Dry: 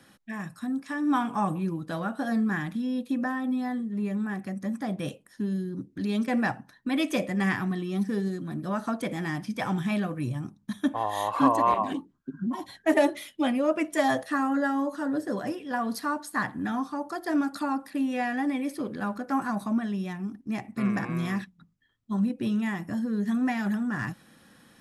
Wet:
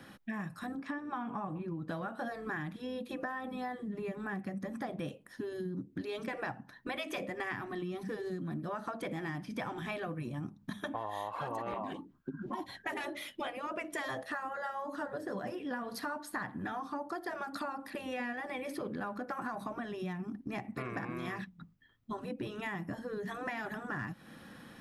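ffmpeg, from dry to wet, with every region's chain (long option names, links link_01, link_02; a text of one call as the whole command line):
ffmpeg -i in.wav -filter_complex "[0:a]asettb=1/sr,asplit=3[link_01][link_02][link_03];[link_01]atrim=end=0.754[link_04];[link_02]atrim=start=0.75:end=1.89,asetpts=PTS-STARTPTS,afade=type=in:duration=0.004:curve=qsin,afade=type=out:start_time=1.136:duration=0.004:curve=qsin,lowpass=frequency=2400:poles=1,acompressor=threshold=-34dB:ratio=1.5:attack=3.2:release=140:knee=1:detection=peak[link_05];[link_03]atrim=start=1.886[link_06];[link_04][link_05]acrossfade=duration=0.004:curve1=hsin:curve2=qsin[link_07];[link_07][link_06]acrossfade=duration=0.004:curve1=qsin:curve2=hsin,equalizer=frequency=8100:width_type=o:width=1.7:gain=-9,afftfilt=real='re*lt(hypot(re,im),0.282)':imag='im*lt(hypot(re,im),0.282)':win_size=1024:overlap=0.75,acompressor=threshold=-41dB:ratio=6,volume=5dB" out.wav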